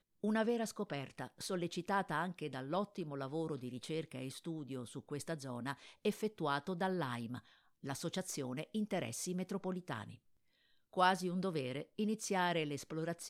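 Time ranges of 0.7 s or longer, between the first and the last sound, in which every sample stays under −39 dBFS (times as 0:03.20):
0:10.02–0:10.97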